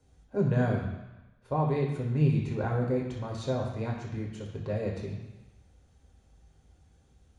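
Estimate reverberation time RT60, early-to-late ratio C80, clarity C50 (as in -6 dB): 1.0 s, 7.0 dB, 4.5 dB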